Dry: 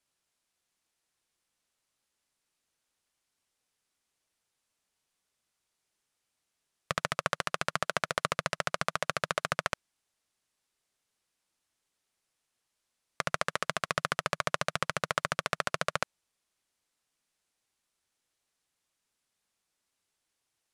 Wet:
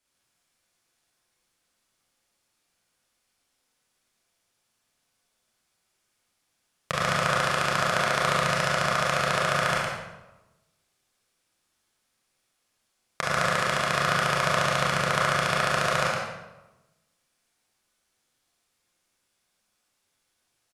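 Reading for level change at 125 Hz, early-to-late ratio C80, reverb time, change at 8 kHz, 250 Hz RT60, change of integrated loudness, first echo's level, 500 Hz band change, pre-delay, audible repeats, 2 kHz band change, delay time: +11.5 dB, 0.5 dB, 1.0 s, +7.0 dB, 1.2 s, +8.0 dB, -4.5 dB, +8.5 dB, 25 ms, 1, +8.5 dB, 0.112 s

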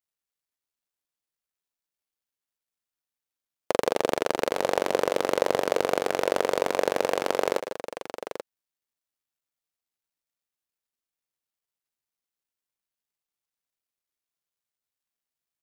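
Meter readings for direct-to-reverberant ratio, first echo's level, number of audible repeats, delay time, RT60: none, -15.0 dB, 2, 0.159 s, none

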